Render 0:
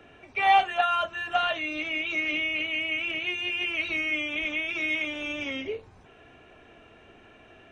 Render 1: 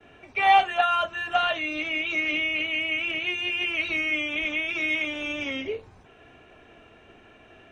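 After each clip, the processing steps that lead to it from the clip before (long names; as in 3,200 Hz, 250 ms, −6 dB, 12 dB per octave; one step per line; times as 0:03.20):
downward expander −51 dBFS
level +2 dB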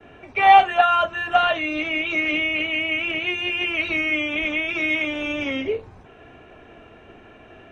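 high-shelf EQ 2,600 Hz −8.5 dB
level +7 dB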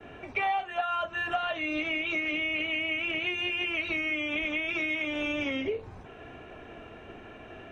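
downward compressor 6 to 1, threshold −28 dBFS, peak gain reduction 19 dB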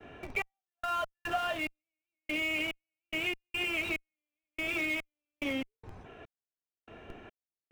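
gate pattern "xx..x.xx..." 72 BPM −60 dB
in parallel at −5.5 dB: comparator with hysteresis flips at −35.5 dBFS
on the sum: level −3.5 dB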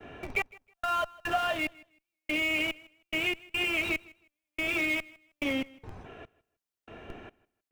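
repeating echo 158 ms, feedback 22%, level −23 dB
level +3.5 dB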